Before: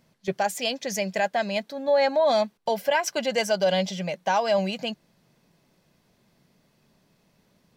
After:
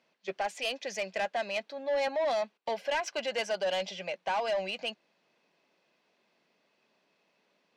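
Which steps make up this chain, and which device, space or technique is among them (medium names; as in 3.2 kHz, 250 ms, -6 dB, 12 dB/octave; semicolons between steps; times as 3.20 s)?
high-pass 150 Hz; intercom (band-pass 380–4700 Hz; peaking EQ 2.6 kHz +5.5 dB 0.37 oct; saturation -21 dBFS, distortion -13 dB); trim -4 dB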